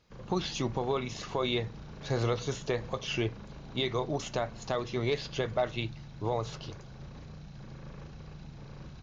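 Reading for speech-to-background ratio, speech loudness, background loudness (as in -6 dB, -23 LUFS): 13.5 dB, -33.5 LUFS, -47.0 LUFS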